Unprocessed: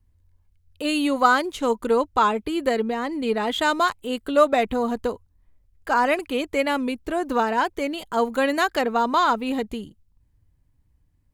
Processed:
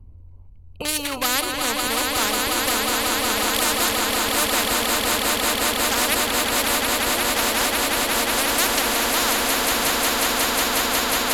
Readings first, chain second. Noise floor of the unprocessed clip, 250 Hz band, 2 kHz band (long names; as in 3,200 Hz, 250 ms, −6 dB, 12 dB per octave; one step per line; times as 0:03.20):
−65 dBFS, −2.5 dB, +5.5 dB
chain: adaptive Wiener filter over 25 samples
parametric band 12,000 Hz +12.5 dB 0.36 octaves
echo that builds up and dies away 181 ms, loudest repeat 8, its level −7 dB
every bin compressed towards the loudest bin 4 to 1